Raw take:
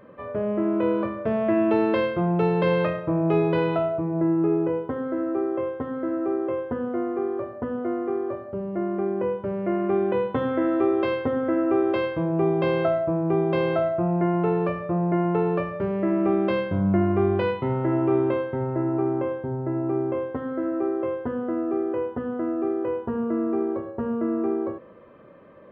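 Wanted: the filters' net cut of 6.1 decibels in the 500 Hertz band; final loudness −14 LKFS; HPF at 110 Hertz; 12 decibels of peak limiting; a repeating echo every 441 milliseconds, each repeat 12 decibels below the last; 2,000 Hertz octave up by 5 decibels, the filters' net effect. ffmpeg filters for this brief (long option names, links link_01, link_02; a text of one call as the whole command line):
ffmpeg -i in.wav -af "highpass=110,equalizer=frequency=500:width_type=o:gain=-9,equalizer=frequency=2000:width_type=o:gain=7,alimiter=level_in=0.5dB:limit=-24dB:level=0:latency=1,volume=-0.5dB,aecho=1:1:441|882|1323:0.251|0.0628|0.0157,volume=18.5dB" out.wav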